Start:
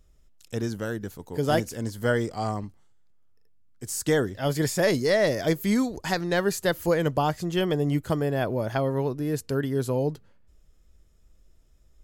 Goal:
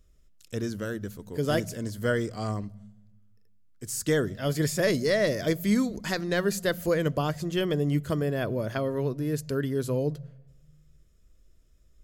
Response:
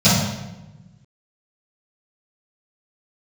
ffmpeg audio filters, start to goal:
-filter_complex "[0:a]equalizer=f=830:t=o:w=0.32:g=-12,asplit=2[a][b];[1:a]atrim=start_sample=2205[c];[b][c]afir=irnorm=-1:irlink=0,volume=-47dB[d];[a][d]amix=inputs=2:normalize=0,volume=-1.5dB"

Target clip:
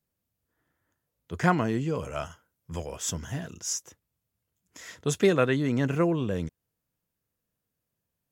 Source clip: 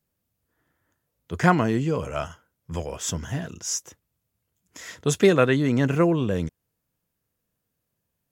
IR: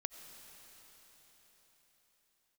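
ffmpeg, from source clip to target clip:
-filter_complex "[0:a]asettb=1/sr,asplit=3[a][b][c];[a]atrim=end=1.954[d];[b]atrim=start=1.95:end=3.73,asetpts=PTS-STARTPTS,afade=t=in:d=0.004:c=qsin,afade=t=out:st=1.776:d=0.004:c=qsin,highshelf=f=5.8k:g=4.5[e];[c]atrim=start=3.726[f];[d][e]acrossfade=d=0.004:c1=hsin:c2=qsin[g];[g][f]acrossfade=d=0.004:c1=qsin:c2=hsin,volume=-4.5dB"

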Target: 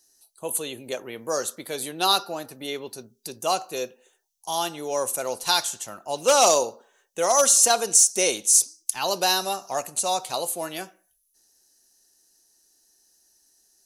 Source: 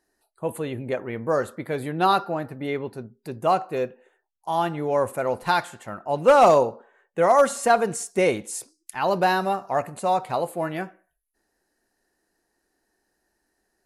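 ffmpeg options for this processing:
-filter_complex "[0:a]equalizer=f=6k:w=4.6:g=9.5,acrossover=split=250[a][b];[a]acompressor=threshold=-47dB:ratio=6[c];[b]aexciter=amount=5:drive=7.2:freq=2.9k[d];[c][d]amix=inputs=2:normalize=0,volume=-4dB"

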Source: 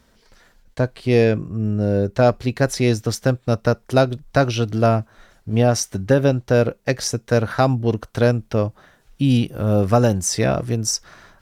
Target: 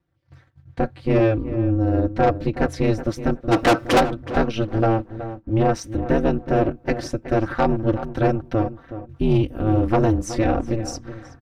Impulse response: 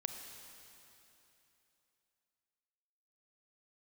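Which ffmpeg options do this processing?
-filter_complex "[0:a]aecho=1:1:4.8:0.71,agate=range=-18dB:threshold=-48dB:ratio=16:detection=peak,bass=f=250:g=5,treble=f=4k:g=-15,aeval=exprs='val(0)*sin(2*PI*110*n/s)':c=same,asplit=3[a][b][c];[a]afade=t=out:st=3.51:d=0.02[d];[b]asplit=2[e][f];[f]highpass=f=720:p=1,volume=32dB,asoftclip=type=tanh:threshold=-5.5dB[g];[e][g]amix=inputs=2:normalize=0,lowpass=f=7.3k:p=1,volume=-6dB,afade=t=in:st=3.51:d=0.02,afade=t=out:st=3.99:d=0.02[h];[c]afade=t=in:st=3.99:d=0.02[i];[d][h][i]amix=inputs=3:normalize=0,asoftclip=type=tanh:threshold=-9dB,asplit=2[j][k];[k]adelay=372,lowpass=f=1.9k:p=1,volume=-12dB,asplit=2[l][m];[m]adelay=372,lowpass=f=1.9k:p=1,volume=0.22,asplit=2[n][o];[o]adelay=372,lowpass=f=1.9k:p=1,volume=0.22[p];[l][n][p]amix=inputs=3:normalize=0[q];[j][q]amix=inputs=2:normalize=0"

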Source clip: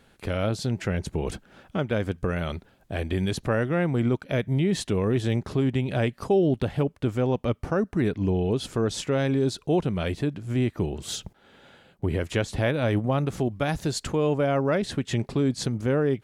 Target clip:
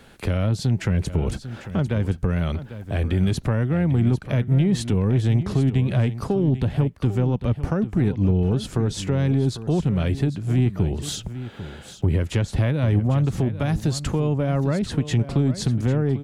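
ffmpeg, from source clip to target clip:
-filter_complex "[0:a]acrossover=split=210[a][b];[b]acompressor=threshold=-40dB:ratio=2.5[c];[a][c]amix=inputs=2:normalize=0,asoftclip=type=tanh:threshold=-19dB,asplit=2[d][e];[e]aecho=0:1:797:0.224[f];[d][f]amix=inputs=2:normalize=0,volume=9dB"

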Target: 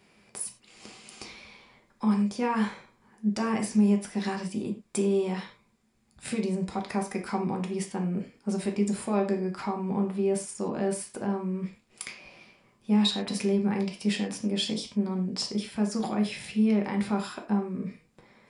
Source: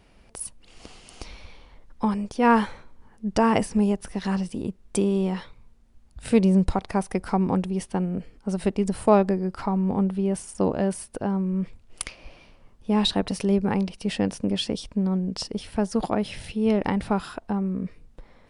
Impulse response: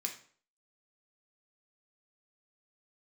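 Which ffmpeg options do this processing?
-filter_complex "[0:a]alimiter=limit=-17dB:level=0:latency=1:release=91,lowshelf=f=85:g=-9[a];[1:a]atrim=start_sample=2205,afade=t=out:st=0.17:d=0.01,atrim=end_sample=7938[b];[a][b]afir=irnorm=-1:irlink=0"

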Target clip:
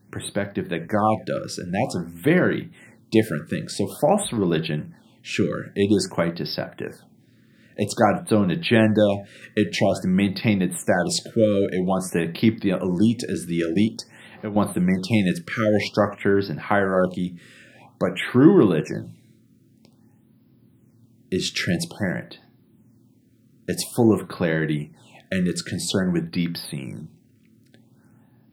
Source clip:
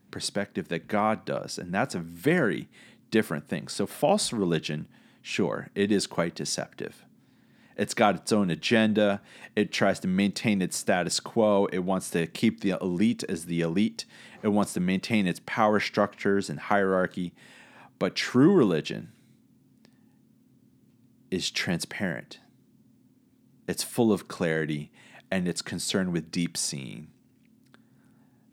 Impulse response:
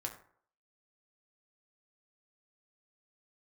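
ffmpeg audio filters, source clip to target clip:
-filter_complex "[0:a]asettb=1/sr,asplit=3[a][b][c];[a]atrim=end=13.944[d];[b]atrim=start=13.94:end=14.56,asetpts=PTS-STARTPTS,afade=t=in:d=0.004:c=qsin,afade=t=out:st=0.616:d=0.004:c=qsin,acompressor=threshold=-32dB:ratio=6[e];[c]atrim=start=14.556[f];[d][e]acrossfade=d=0.004:c1=hsin:c2=qsin[g];[g][f]acrossfade=d=0.004:c1=qsin:c2=hsin,asplit=2[h][i];[1:a]atrim=start_sample=2205,afade=t=out:st=0.15:d=0.01,atrim=end_sample=7056,lowshelf=f=320:g=6[j];[i][j]afir=irnorm=-1:irlink=0,volume=1dB[k];[h][k]amix=inputs=2:normalize=0,afftfilt=real='re*(1-between(b*sr/1024,780*pow(7800/780,0.5+0.5*sin(2*PI*0.5*pts/sr))/1.41,780*pow(7800/780,0.5+0.5*sin(2*PI*0.5*pts/sr))*1.41))':imag='im*(1-between(b*sr/1024,780*pow(7800/780,0.5+0.5*sin(2*PI*0.5*pts/sr))/1.41,780*pow(7800/780,0.5+0.5*sin(2*PI*0.5*pts/sr))*1.41))':win_size=1024:overlap=0.75,volume=-2dB"

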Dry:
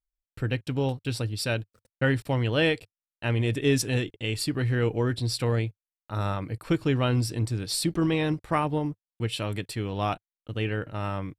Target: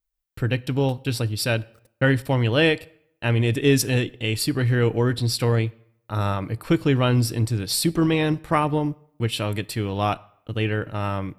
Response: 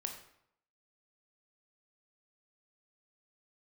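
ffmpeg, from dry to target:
-filter_complex "[0:a]aexciter=amount=2.1:drive=2.4:freq=11k,asplit=2[a][b];[1:a]atrim=start_sample=2205[c];[b][c]afir=irnorm=-1:irlink=0,volume=-13.5dB[d];[a][d]amix=inputs=2:normalize=0,volume=3.5dB"

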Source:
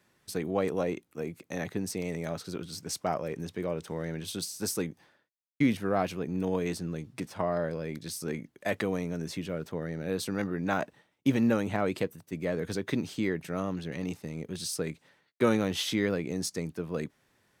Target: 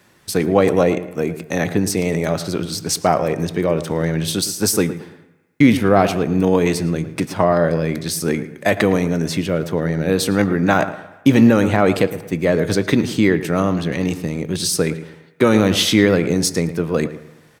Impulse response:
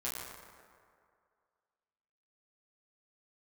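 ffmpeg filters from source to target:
-filter_complex "[0:a]asplit=2[a][b];[b]adelay=111,lowpass=f=2k:p=1,volume=-13dB,asplit=2[c][d];[d]adelay=111,lowpass=f=2k:p=1,volume=0.36,asplit=2[e][f];[f]adelay=111,lowpass=f=2k:p=1,volume=0.36,asplit=2[g][h];[h]adelay=111,lowpass=f=2k:p=1,volume=0.36[i];[a][c][e][g][i]amix=inputs=5:normalize=0,asplit=2[j][k];[1:a]atrim=start_sample=2205,asetrate=70560,aresample=44100[l];[k][l]afir=irnorm=-1:irlink=0,volume=-13.5dB[m];[j][m]amix=inputs=2:normalize=0,alimiter=level_in=15dB:limit=-1dB:release=50:level=0:latency=1,volume=-1dB"

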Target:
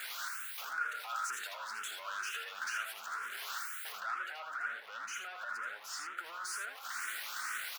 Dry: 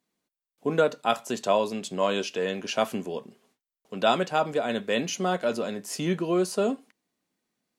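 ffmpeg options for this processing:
-filter_complex "[0:a]aeval=exprs='val(0)+0.5*0.0168*sgn(val(0))':c=same,asettb=1/sr,asplit=3[a][b][c];[a]atrim=end=3.984[d];[b]atrim=start=3.98:end=6.18,asetpts=PTS-STARTPTS,afade=t=in:d=0.004:c=qsin,afade=t=out:st=2.196:d=0.004:c=qsin,highshelf=f=2.5k:g=-10.5[e];[c]atrim=start=6.176[f];[d][e]acrossfade=d=0.004:c1=hsin:c2=qsin[g];[g][f]acrossfade=d=0.004:c1=qsin:c2=hsin,acompressor=threshold=-36dB:ratio=2,alimiter=level_in=5dB:limit=-24dB:level=0:latency=1:release=63,volume=-5dB,asoftclip=type=tanh:threshold=-39dB,highpass=f=1.4k:t=q:w=6.7,aecho=1:1:80:0.531,asplit=2[h][i];[i]afreqshift=2.1[j];[h][j]amix=inputs=2:normalize=1,volume=3dB"

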